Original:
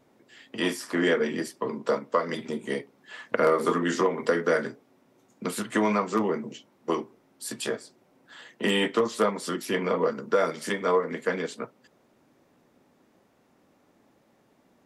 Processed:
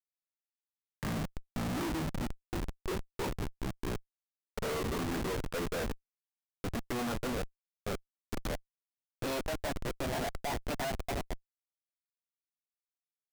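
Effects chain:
gliding playback speed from 53% → 170%
comparator with hysteresis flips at −26.5 dBFS
level −5 dB

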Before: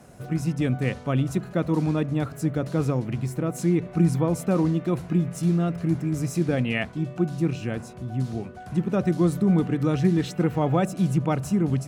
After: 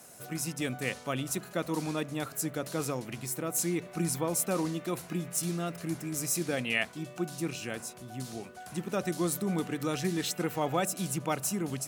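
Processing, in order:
RIAA equalisation recording
level −3.5 dB

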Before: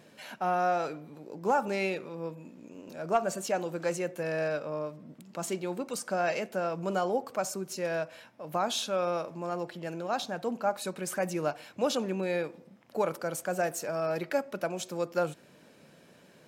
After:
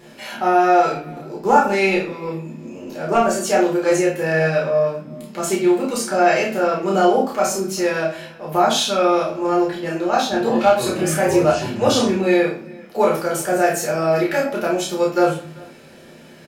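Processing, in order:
0:10.00–0:12.08: delay with pitch and tempo change per echo 319 ms, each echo −7 semitones, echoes 2, each echo −6 dB
double-tracking delay 31 ms −3 dB
far-end echo of a speakerphone 390 ms, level −23 dB
convolution reverb RT60 0.40 s, pre-delay 5 ms, DRR −2.5 dB
level +6.5 dB

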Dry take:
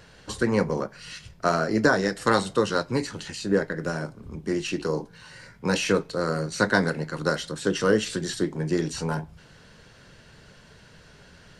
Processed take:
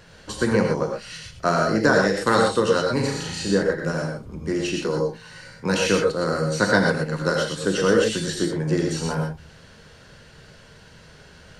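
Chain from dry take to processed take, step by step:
0:02.92–0:03.51: flutter between parallel walls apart 6.2 metres, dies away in 0.56 s
reverb whose tail is shaped and stops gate 140 ms rising, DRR 1 dB
level +1 dB

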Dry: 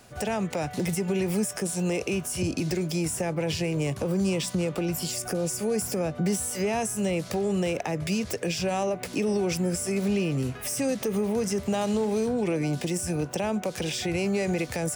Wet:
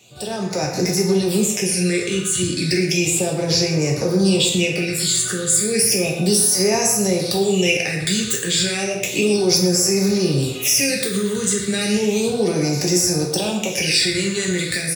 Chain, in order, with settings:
high-shelf EQ 7,700 Hz +3 dB, from 0:05.50 +10.5 dB
all-pass phaser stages 8, 0.33 Hz, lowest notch 720–3,100 Hz
meter weighting curve D
automatic gain control gain up to 7 dB
notch filter 3,100 Hz, Q 14
far-end echo of a speakerphone 120 ms, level −8 dB
convolution reverb, pre-delay 3 ms, DRR −0.5 dB
level −2 dB

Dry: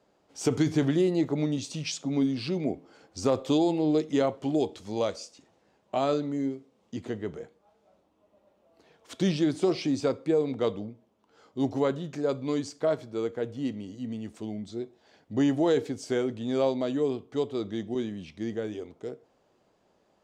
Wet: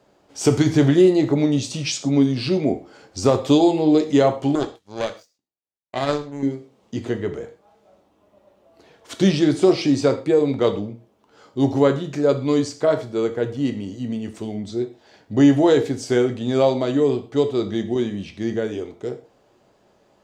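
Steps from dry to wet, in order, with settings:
0:04.55–0:06.43: power curve on the samples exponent 2
reverb whose tail is shaped and stops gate 150 ms falling, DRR 7 dB
level +8 dB

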